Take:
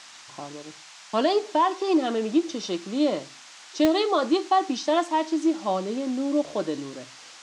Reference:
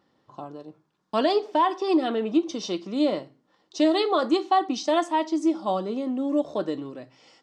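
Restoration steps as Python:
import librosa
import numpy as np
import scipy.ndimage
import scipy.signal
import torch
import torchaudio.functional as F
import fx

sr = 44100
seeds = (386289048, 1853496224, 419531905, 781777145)

y = fx.fix_declick_ar(x, sr, threshold=10.0)
y = fx.noise_reduce(y, sr, print_start_s=3.25, print_end_s=3.75, reduce_db=20.0)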